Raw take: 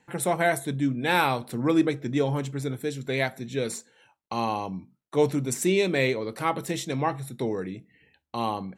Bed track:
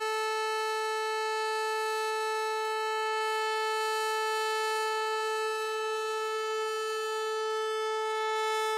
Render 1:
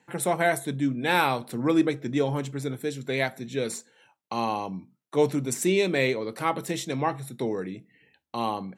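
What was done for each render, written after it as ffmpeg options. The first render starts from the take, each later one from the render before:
-af "highpass=120"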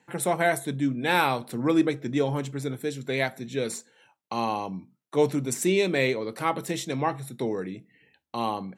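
-af anull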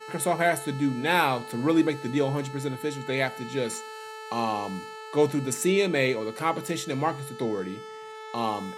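-filter_complex "[1:a]volume=-10dB[a];[0:a][a]amix=inputs=2:normalize=0"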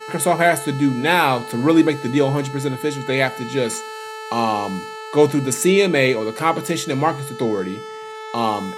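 -af "volume=8dB,alimiter=limit=-2dB:level=0:latency=1"

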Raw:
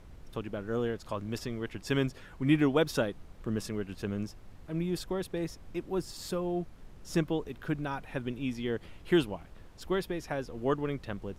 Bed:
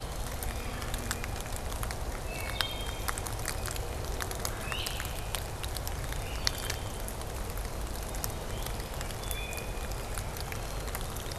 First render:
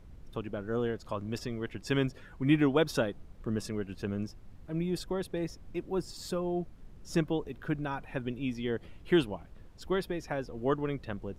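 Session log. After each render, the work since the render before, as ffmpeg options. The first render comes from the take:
-af "afftdn=nr=6:nf=-52"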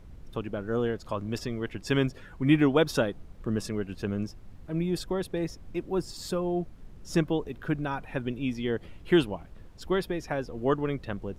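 -af "volume=3.5dB"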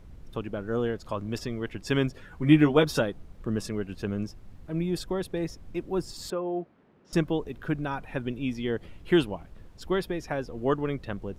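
-filter_complex "[0:a]asettb=1/sr,asplit=3[a][b][c];[a]atrim=end=2.304[d];[b]atrim=start=2.3:end=3,asetpts=PTS-STARTPTS,afade=t=in:d=0.004:c=qsin,afade=t=out:st=0.696:d=0.004:c=qsin,asplit=2[e][f];[f]adelay=13,volume=-4.5dB[g];[e][g]amix=inputs=2:normalize=0,atrim=end_sample=30870[h];[c]atrim=start=2.996[i];[d][h]acrossfade=d=0.004:c1=hsin:c2=qsin[j];[j][i]acrossfade=d=0.004:c1=qsin:c2=hsin,asettb=1/sr,asplit=3[k][l][m];[k]atrim=end=6.304[n];[l]atrim=start=6.3:end=7.13,asetpts=PTS-STARTPTS,afade=t=in:d=0.004:c=qsin,afade=t=out:st=0.826:d=0.004:c=qsin,highpass=270,lowpass=2.3k[o];[m]atrim=start=7.126[p];[n][o]acrossfade=d=0.004:c1=hsin:c2=qsin[q];[q][p]acrossfade=d=0.004:c1=qsin:c2=hsin"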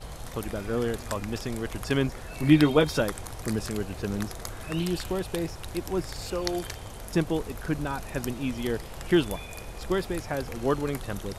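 -filter_complex "[1:a]volume=-3.5dB[a];[0:a][a]amix=inputs=2:normalize=0"

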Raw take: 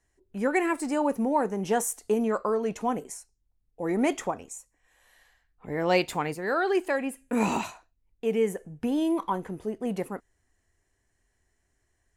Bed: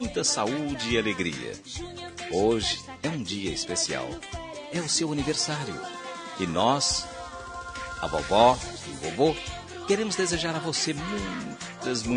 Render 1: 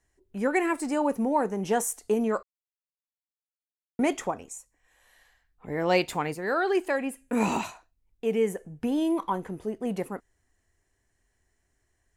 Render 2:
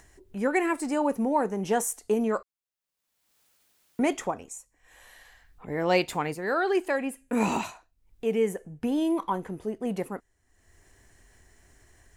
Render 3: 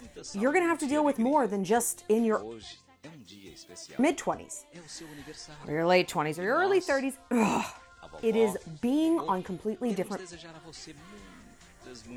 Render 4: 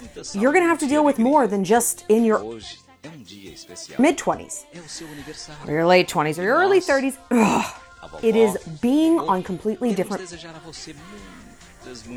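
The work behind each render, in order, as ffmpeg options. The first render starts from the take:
-filter_complex "[0:a]asplit=3[a][b][c];[a]atrim=end=2.43,asetpts=PTS-STARTPTS,afade=t=out:st=2.426:d=0.004:c=hsin[d];[b]atrim=start=2.43:end=3.99,asetpts=PTS-STARTPTS,volume=0[e];[c]atrim=start=3.99,asetpts=PTS-STARTPTS,afade=t=in:d=0.004:c=hsin[f];[d][e][f]concat=n=3:v=0:a=1"
-af "acompressor=mode=upward:threshold=-43dB:ratio=2.5"
-filter_complex "[1:a]volume=-18.5dB[a];[0:a][a]amix=inputs=2:normalize=0"
-af "volume=8.5dB,alimiter=limit=-2dB:level=0:latency=1"

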